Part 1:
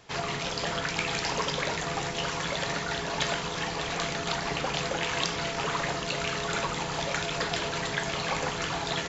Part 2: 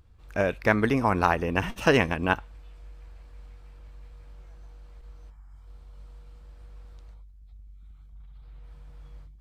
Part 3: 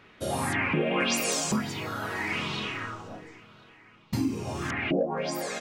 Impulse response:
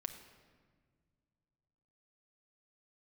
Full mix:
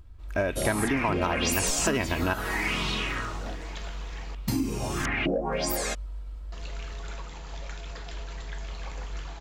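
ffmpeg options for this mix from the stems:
-filter_complex "[0:a]adelay=550,volume=0.2,asplit=3[s0][s1][s2];[s0]atrim=end=4.35,asetpts=PTS-STARTPTS,afade=t=out:st=4.346:d=0.004:c=hsin[s3];[s1]atrim=start=4.35:end=6.52,asetpts=PTS-STARTPTS,volume=0[s4];[s2]atrim=start=6.52,asetpts=PTS-STARTPTS,afade=t=in:d=0.004:c=hsin[s5];[s3][s4][s5]concat=n=3:v=0:a=1[s6];[1:a]lowshelf=f=68:g=8,aecho=1:1:3.1:0.42,volume=1.26[s7];[2:a]highshelf=f=6800:g=10.5,adelay=350,volume=1.26[s8];[s6][s7][s8]amix=inputs=3:normalize=0,asoftclip=type=tanh:threshold=0.473,acompressor=threshold=0.0794:ratio=10"

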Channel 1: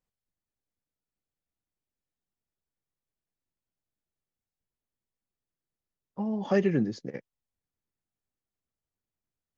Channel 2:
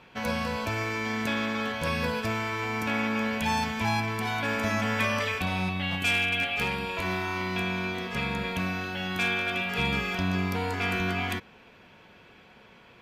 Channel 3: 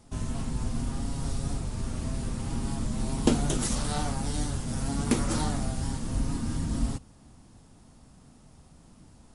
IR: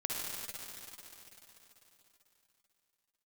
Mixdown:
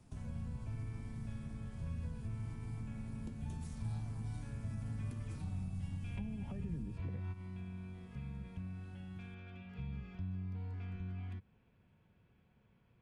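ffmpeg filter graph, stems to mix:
-filter_complex "[0:a]lowpass=2100,alimiter=limit=0.0794:level=0:latency=1,volume=1.12,asplit=2[s0][s1];[1:a]aemphasis=mode=reproduction:type=bsi,volume=0.282[s2];[2:a]acompressor=threshold=0.0158:ratio=3,volume=0.251[s3];[s1]apad=whole_len=573868[s4];[s2][s4]sidechaingate=range=0.224:threshold=0.002:ratio=16:detection=peak[s5];[s0][s5]amix=inputs=2:normalize=0,acompressor=threshold=0.00891:ratio=6,volume=1[s6];[s3][s6]amix=inputs=2:normalize=0,equalizer=f=120:w=0.73:g=9,acrossover=split=180[s7][s8];[s8]acompressor=threshold=0.00158:ratio=2.5[s9];[s7][s9]amix=inputs=2:normalize=0"

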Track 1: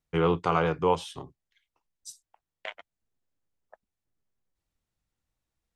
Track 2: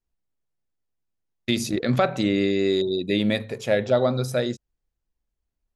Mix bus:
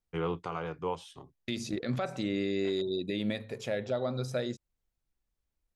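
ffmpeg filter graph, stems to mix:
-filter_complex "[0:a]volume=0.398[s0];[1:a]acrossover=split=8400[s1][s2];[s2]acompressor=threshold=0.002:ratio=4:attack=1:release=60[s3];[s1][s3]amix=inputs=2:normalize=0,volume=0.631[s4];[s0][s4]amix=inputs=2:normalize=0,alimiter=limit=0.0794:level=0:latency=1:release=426"

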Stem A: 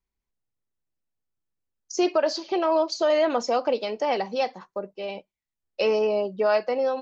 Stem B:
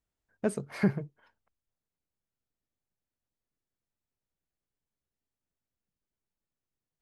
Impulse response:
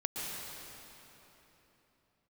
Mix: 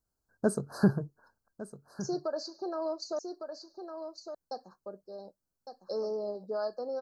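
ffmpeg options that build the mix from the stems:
-filter_complex "[0:a]equalizer=f=980:t=o:w=0.5:g=-5.5,bandreject=f=1500:w=13,adelay=100,volume=0.282,asplit=3[s0][s1][s2];[s0]atrim=end=3.19,asetpts=PTS-STARTPTS,afade=t=out:st=3.186:d=0.004:c=hsin[s3];[s1]atrim=start=3.19:end=4.51,asetpts=PTS-STARTPTS,volume=0[s4];[s2]atrim=start=4.51,asetpts=PTS-STARTPTS,afade=t=in:d=0.004:c=hsin[s5];[s3][s4][s5]concat=n=3:v=0:a=1,asplit=2[s6][s7];[s7]volume=0.422[s8];[1:a]volume=1.26,asplit=2[s9][s10];[s10]volume=0.178[s11];[s8][s11]amix=inputs=2:normalize=0,aecho=0:1:1157:1[s12];[s6][s9][s12]amix=inputs=3:normalize=0,asuperstop=centerf=2600:order=20:qfactor=1.1,highshelf=f=8500:g=3"

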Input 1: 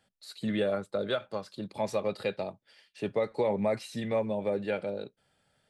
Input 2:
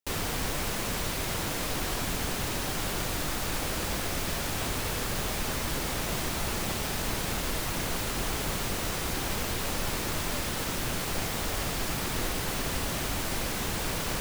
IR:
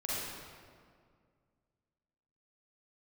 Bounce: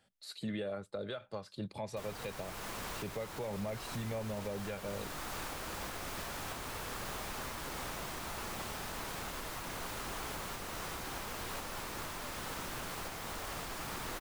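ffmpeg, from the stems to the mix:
-filter_complex "[0:a]asubboost=boost=5:cutoff=130,volume=0.891[s0];[1:a]equalizer=f=1100:w=0.97:g=6,acrossover=split=240|3000[s1][s2][s3];[s1]acompressor=threshold=0.0224:ratio=6[s4];[s4][s2][s3]amix=inputs=3:normalize=0,adelay=1900,volume=0.299[s5];[s0][s5]amix=inputs=2:normalize=0,alimiter=level_in=2:limit=0.0631:level=0:latency=1:release=327,volume=0.501"

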